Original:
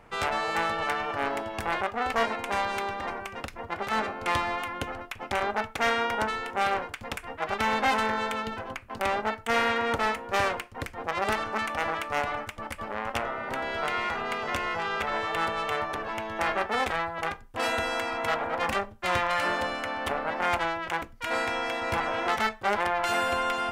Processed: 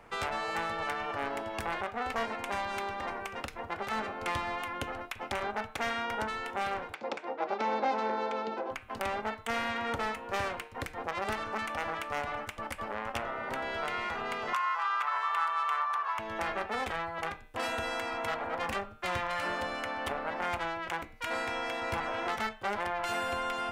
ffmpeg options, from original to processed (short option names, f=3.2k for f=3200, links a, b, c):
-filter_complex "[0:a]asplit=3[a][b][c];[a]afade=t=out:st=6.93:d=0.02[d];[b]highpass=f=200:w=0.5412,highpass=f=200:w=1.3066,equalizer=f=350:t=q:w=4:g=10,equalizer=f=540:t=q:w=4:g=9,equalizer=f=820:t=q:w=4:g=6,equalizer=f=1.8k:t=q:w=4:g=-5,equalizer=f=3k:t=q:w=4:g=-6,lowpass=f=5.7k:w=0.5412,lowpass=f=5.7k:w=1.3066,afade=t=in:st=6.93:d=0.02,afade=t=out:st=8.7:d=0.02[e];[c]afade=t=in:st=8.7:d=0.02[f];[d][e][f]amix=inputs=3:normalize=0,asettb=1/sr,asplit=3[g][h][i];[g]atrim=end=14.534[j];[h]atrim=start=14.53:end=16.19,asetpts=PTS-STARTPTS,afade=t=in:d=0.004:c=qsin,afade=t=out:st=1.656:d=0.004:c=qsin,highpass=f=1.1k:t=q:w=5[k];[i]atrim=start=16.186[l];[j][k]acrossfade=d=0.004:c1=hsin:c2=qsin[m];[m][l]acrossfade=d=0.004:c1=qsin:c2=hsin,bass=f=250:g=-4,treble=f=4k:g=0,bandreject=f=153.9:t=h:w=4,bandreject=f=307.8:t=h:w=4,bandreject=f=461.7:t=h:w=4,bandreject=f=615.6:t=h:w=4,bandreject=f=769.5:t=h:w=4,bandreject=f=923.4:t=h:w=4,bandreject=f=1.0773k:t=h:w=4,bandreject=f=1.2312k:t=h:w=4,bandreject=f=1.3851k:t=h:w=4,bandreject=f=1.539k:t=h:w=4,bandreject=f=1.6929k:t=h:w=4,bandreject=f=1.8468k:t=h:w=4,bandreject=f=2.0007k:t=h:w=4,bandreject=f=2.1546k:t=h:w=4,bandreject=f=2.3085k:t=h:w=4,bandreject=f=2.4624k:t=h:w=4,bandreject=f=2.6163k:t=h:w=4,bandreject=f=2.7702k:t=h:w=4,bandreject=f=2.9241k:t=h:w=4,bandreject=f=3.078k:t=h:w=4,bandreject=f=3.2319k:t=h:w=4,bandreject=f=3.3858k:t=h:w=4,bandreject=f=3.5397k:t=h:w=4,bandreject=f=3.6936k:t=h:w=4,bandreject=f=3.8475k:t=h:w=4,bandreject=f=4.0014k:t=h:w=4,bandreject=f=4.1553k:t=h:w=4,bandreject=f=4.3092k:t=h:w=4,acrossover=split=220[n][o];[o]acompressor=threshold=-35dB:ratio=2[p];[n][p]amix=inputs=2:normalize=0"